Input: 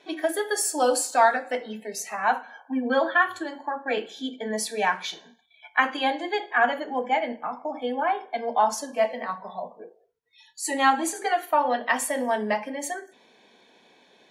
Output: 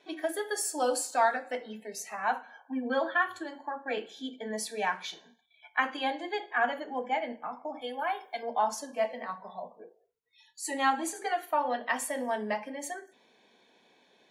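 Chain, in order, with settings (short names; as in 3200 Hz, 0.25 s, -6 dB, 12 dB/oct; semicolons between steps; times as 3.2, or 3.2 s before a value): 7.81–8.43 RIAA curve recording; gain -6.5 dB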